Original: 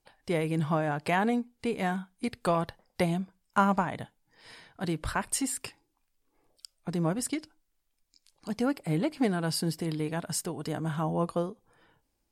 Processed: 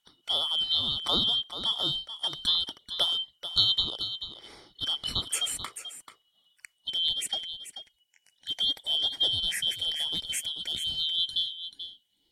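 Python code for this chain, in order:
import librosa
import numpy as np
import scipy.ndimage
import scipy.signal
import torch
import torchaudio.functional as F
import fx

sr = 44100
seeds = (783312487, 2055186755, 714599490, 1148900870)

y = fx.band_shuffle(x, sr, order='2413')
y = fx.peak_eq(y, sr, hz=1200.0, db=fx.steps((0.0, 5.0), (6.74, -12.0)), octaves=0.39)
y = y + 10.0 ** (-11.0 / 20.0) * np.pad(y, (int(436 * sr / 1000.0), 0))[:len(y)]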